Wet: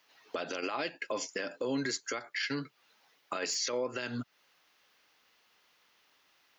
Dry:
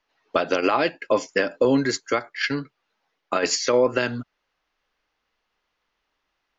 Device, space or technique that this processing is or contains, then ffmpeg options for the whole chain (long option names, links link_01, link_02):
broadcast voice chain: -af "highpass=110,aemphasis=mode=production:type=50kf,deesser=0.35,acompressor=threshold=-36dB:ratio=3,equalizer=frequency=3100:width_type=o:width=2.1:gain=3,alimiter=level_in=4dB:limit=-24dB:level=0:latency=1:release=100,volume=-4dB,volume=4dB"